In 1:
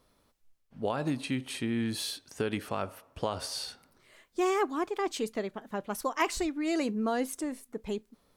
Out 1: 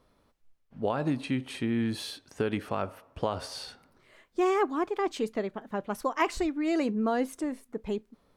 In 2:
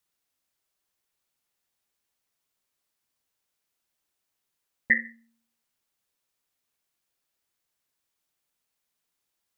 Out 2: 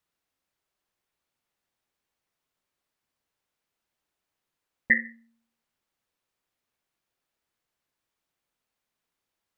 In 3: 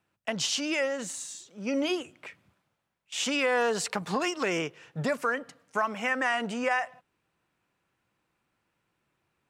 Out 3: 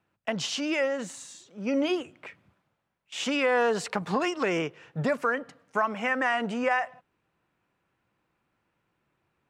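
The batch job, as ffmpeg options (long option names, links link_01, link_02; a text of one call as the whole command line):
ffmpeg -i in.wav -af "highshelf=frequency=4000:gain=-10.5,volume=2.5dB" out.wav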